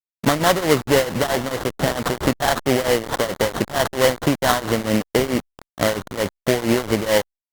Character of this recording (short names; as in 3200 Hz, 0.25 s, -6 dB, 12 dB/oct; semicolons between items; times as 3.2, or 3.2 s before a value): aliases and images of a low sample rate 2500 Hz, jitter 20%; tremolo triangle 4.5 Hz, depth 90%; a quantiser's noise floor 6-bit, dither none; Opus